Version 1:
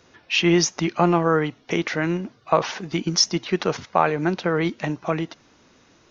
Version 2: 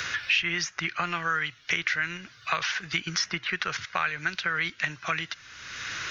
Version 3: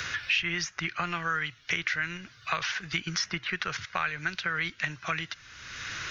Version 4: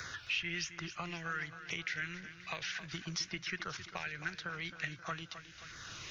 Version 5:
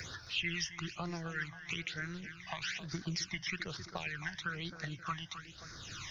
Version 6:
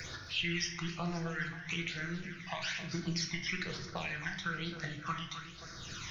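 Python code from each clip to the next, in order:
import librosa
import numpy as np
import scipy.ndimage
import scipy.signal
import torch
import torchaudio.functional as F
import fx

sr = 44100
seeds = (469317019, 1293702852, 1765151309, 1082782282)

y1 = fx.curve_eq(x, sr, hz=(110.0, 240.0, 890.0, 1500.0, 6900.0), db=(0, -17, -10, 10, 4))
y1 = fx.band_squash(y1, sr, depth_pct=100)
y1 = y1 * librosa.db_to_amplitude(-7.0)
y2 = fx.low_shelf(y1, sr, hz=140.0, db=7.5)
y2 = y2 * librosa.db_to_amplitude(-2.5)
y3 = fx.filter_lfo_notch(y2, sr, shape='saw_down', hz=1.4, low_hz=730.0, high_hz=3000.0, q=1.2)
y3 = fx.echo_feedback(y3, sr, ms=266, feedback_pct=53, wet_db=-12)
y3 = y3 * librosa.db_to_amplitude(-7.0)
y4 = fx.phaser_stages(y3, sr, stages=12, low_hz=410.0, high_hz=2900.0, hz=1.1, feedback_pct=20)
y4 = y4 * librosa.db_to_amplitude(4.0)
y5 = fx.room_shoebox(y4, sr, seeds[0], volume_m3=170.0, walls='mixed', distance_m=0.7)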